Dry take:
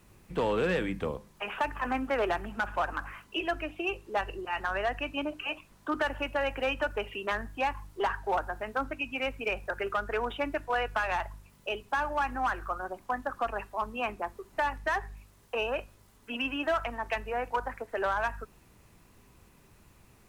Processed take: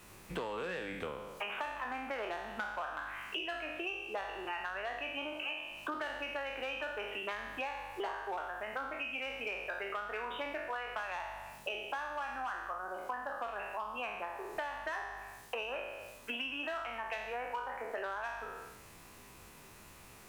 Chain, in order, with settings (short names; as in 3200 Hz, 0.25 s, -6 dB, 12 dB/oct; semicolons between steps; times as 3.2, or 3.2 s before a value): spectral trails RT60 0.73 s; low shelf 320 Hz -10.5 dB; compressor 8:1, threshold -43 dBFS, peak gain reduction 19 dB; gain +6 dB